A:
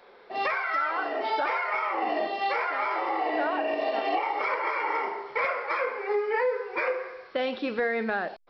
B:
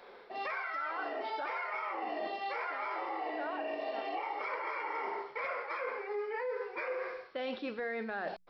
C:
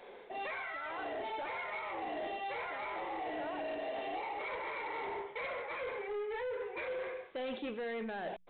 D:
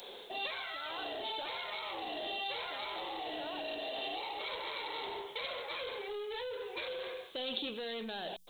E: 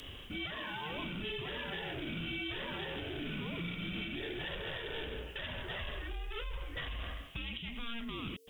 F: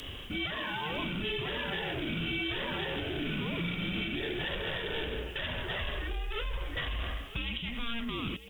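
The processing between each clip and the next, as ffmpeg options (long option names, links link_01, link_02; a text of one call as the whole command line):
ffmpeg -i in.wav -af "bandreject=frequency=60:width_type=h:width=6,bandreject=frequency=120:width_type=h:width=6,bandreject=frequency=180:width_type=h:width=6,areverse,acompressor=threshold=-35dB:ratio=6,areverse" out.wav
ffmpeg -i in.wav -af "equalizer=frequency=1300:width_type=o:width=0.67:gain=-9,aresample=8000,asoftclip=type=tanh:threshold=-37.5dB,aresample=44100,volume=3dB" out.wav
ffmpeg -i in.wav -af "acompressor=threshold=-40dB:ratio=6,aexciter=amount=13.9:drive=2.9:freq=3200,volume=1dB" out.wav
ffmpeg -i in.wav -af "alimiter=level_in=7dB:limit=-24dB:level=0:latency=1:release=212,volume=-7dB,afreqshift=-460,volume=1dB" out.wav
ffmpeg -i in.wav -af "aecho=1:1:954:0.158,volume=5.5dB" out.wav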